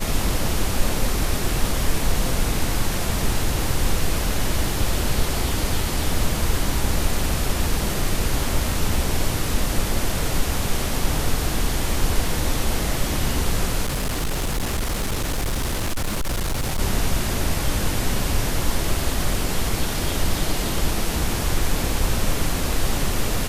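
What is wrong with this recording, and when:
0:13.84–0:16.80: clipping −19.5 dBFS

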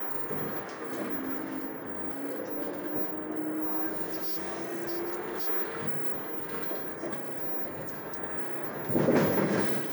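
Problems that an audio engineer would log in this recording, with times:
0:04.04–0:05.48: clipping −29.5 dBFS
0:07.68–0:08.20: clipping −32 dBFS

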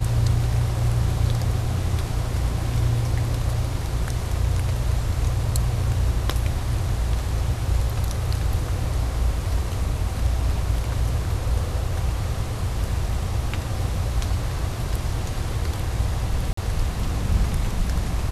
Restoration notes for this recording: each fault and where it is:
0:16.53–0:16.57: drop-out 44 ms

